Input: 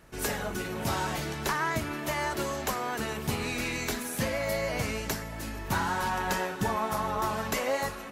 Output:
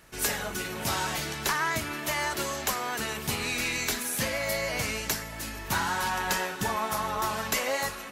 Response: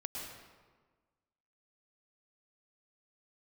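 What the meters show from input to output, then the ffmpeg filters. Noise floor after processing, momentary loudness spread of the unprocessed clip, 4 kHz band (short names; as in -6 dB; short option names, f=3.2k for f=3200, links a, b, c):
-39 dBFS, 4 LU, +5.0 dB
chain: -af "tiltshelf=f=1.3k:g=-4.5,aeval=exprs='0.188*(cos(1*acos(clip(val(0)/0.188,-1,1)))-cos(1*PI/2))+0.00376*(cos(2*acos(clip(val(0)/0.188,-1,1)))-cos(2*PI/2))':c=same,volume=1.5dB"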